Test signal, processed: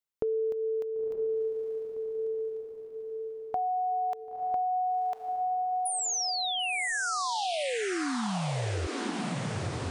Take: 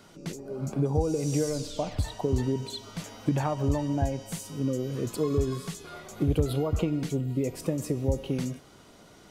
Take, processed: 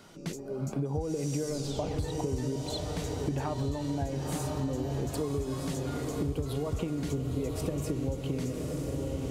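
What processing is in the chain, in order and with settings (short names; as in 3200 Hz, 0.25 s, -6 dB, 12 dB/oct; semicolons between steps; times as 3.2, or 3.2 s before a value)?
diffused feedback echo 1.003 s, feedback 53%, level -5.5 dB; compressor, threshold -28 dBFS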